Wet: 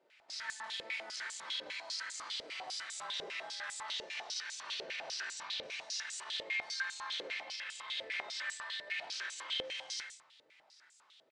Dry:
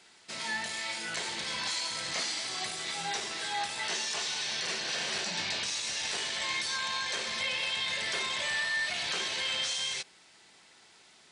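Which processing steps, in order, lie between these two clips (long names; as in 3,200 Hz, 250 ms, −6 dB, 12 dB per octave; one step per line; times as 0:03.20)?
amplitude modulation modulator 220 Hz, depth 55%
on a send: single-tap delay 126 ms −8.5 dB
on the sum: rectangular room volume 690 cubic metres, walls furnished, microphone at 2.6 metres
brickwall limiter −25.5 dBFS, peak gain reduction 7 dB
band-pass on a step sequencer 10 Hz 500–7,500 Hz
level +3.5 dB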